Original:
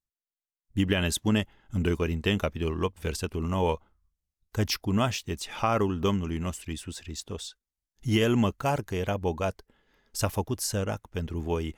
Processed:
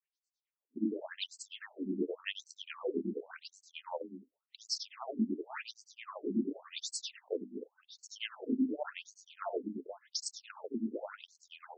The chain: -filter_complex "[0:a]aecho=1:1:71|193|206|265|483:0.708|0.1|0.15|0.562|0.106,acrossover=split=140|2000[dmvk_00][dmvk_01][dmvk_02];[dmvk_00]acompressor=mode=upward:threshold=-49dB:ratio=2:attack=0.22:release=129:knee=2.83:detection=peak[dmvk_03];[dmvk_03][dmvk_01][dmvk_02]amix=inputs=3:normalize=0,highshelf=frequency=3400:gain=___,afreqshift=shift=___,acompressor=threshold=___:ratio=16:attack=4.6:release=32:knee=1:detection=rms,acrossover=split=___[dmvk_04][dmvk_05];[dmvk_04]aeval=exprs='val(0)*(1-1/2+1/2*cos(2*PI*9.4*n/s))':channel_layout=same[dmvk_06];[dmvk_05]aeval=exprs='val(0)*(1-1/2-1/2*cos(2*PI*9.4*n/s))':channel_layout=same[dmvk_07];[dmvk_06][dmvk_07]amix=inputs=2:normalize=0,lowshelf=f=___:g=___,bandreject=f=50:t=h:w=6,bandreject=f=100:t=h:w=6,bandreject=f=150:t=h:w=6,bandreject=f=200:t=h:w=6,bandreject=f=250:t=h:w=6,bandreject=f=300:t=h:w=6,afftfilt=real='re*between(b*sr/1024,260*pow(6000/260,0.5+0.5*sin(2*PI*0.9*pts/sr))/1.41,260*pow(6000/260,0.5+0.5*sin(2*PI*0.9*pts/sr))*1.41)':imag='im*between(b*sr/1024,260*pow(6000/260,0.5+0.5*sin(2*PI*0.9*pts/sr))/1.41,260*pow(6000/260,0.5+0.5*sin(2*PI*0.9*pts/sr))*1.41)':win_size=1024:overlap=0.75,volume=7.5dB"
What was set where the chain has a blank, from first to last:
4.5, 25, -34dB, 1000, 330, 11